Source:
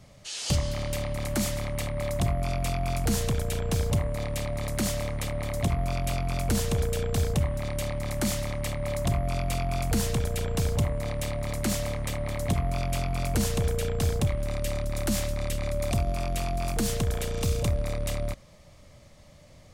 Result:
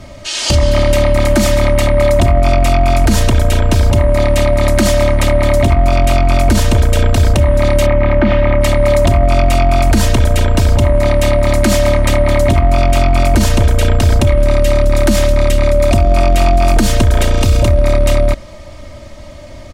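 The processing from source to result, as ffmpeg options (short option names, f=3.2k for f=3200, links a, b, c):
-filter_complex "[0:a]asettb=1/sr,asplit=3[a][b][c];[a]atrim=end=7.864[d];[b]atrim=start=7.86:end=8.61,asetpts=PTS-STARTPTS,afade=t=in:d=0.004:c=qsin,afade=t=out:st=0.746:d=0.004:c=qsin,lowpass=f=2.7k:w=0.5412,lowpass=f=2.7k:w=1.3066[e];[c]atrim=start=8.606[f];[d][e]acrossfade=d=0.004:c1=hsin:c2=qsin[g];[g][f]acrossfade=d=0.004:c1=qsin:c2=hsin,aemphasis=mode=reproduction:type=cd,aecho=1:1:3.2:0.67,alimiter=level_in=19.5dB:limit=-1dB:release=50:level=0:latency=1,volume=-1dB"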